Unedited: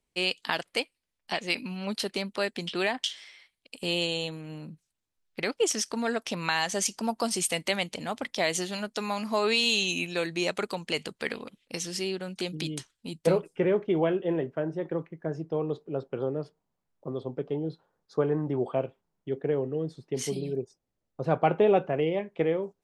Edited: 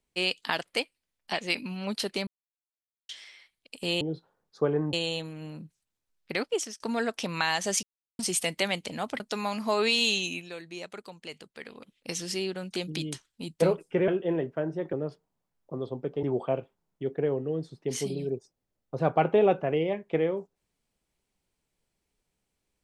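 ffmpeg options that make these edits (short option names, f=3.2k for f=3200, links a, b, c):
-filter_complex "[0:a]asplit=14[a][b][c][d][e][f][g][h][i][j][k][l][m][n];[a]atrim=end=2.27,asetpts=PTS-STARTPTS,afade=t=out:st=2.266:d=0.004:c=hsin[o];[b]atrim=start=2.27:end=3.09,asetpts=PTS-STARTPTS,volume=0[p];[c]atrim=start=3.09:end=4.012,asetpts=PTS-STARTPTS,afade=t=in:d=0.004:c=hsin[q];[d]atrim=start=17.568:end=18.492[r];[e]atrim=start=4.008:end=5.88,asetpts=PTS-STARTPTS,afade=t=out:st=1.492:d=0.38:silence=0.0668344[s];[f]atrim=start=5.88:end=6.91,asetpts=PTS-STARTPTS,afade=t=in:d=0.004:c=hsin:silence=0.0668344,afade=t=out:st=1.026:d=0.004:c=hsin[t];[g]atrim=start=6.91:end=7.27,asetpts=PTS-STARTPTS,volume=0[u];[h]atrim=start=7.27:end=8.282,asetpts=PTS-STARTPTS,afade=t=in:d=0.004:c=hsin[v];[i]atrim=start=8.848:end=10.18,asetpts=PTS-STARTPTS,afade=t=out:st=0.892:d=0.44:silence=0.266073[w];[j]atrim=start=10.18:end=11.31,asetpts=PTS-STARTPTS,volume=-11.5dB[x];[k]atrim=start=11.31:end=13.732,asetpts=PTS-STARTPTS,afade=t=in:d=0.44:silence=0.266073[y];[l]atrim=start=14.078:end=14.932[z];[m]atrim=start=16.268:end=17.572[aa];[n]atrim=start=18.488[ab];[o][p][q]concat=n=3:v=0:a=1[ac];[ac][r]acrossfade=d=0.004:c1=hsin:c2=hsin[ad];[s][t][u][v]concat=n=4:v=0:a=1[ae];[ad][ae]acrossfade=d=0.004:c1=hsin:c2=hsin[af];[w][x][y]concat=n=3:v=0:a=1[ag];[af][ag]acrossfade=d=0.004:c1=hsin:c2=hsin[ah];[ah][z]acrossfade=d=0.004:c1=hsin:c2=hsin[ai];[ai][aa]acrossfade=d=0.004:c1=hsin:c2=hsin[aj];[aj][ab]acrossfade=d=0.004:c1=hsin:c2=hsin"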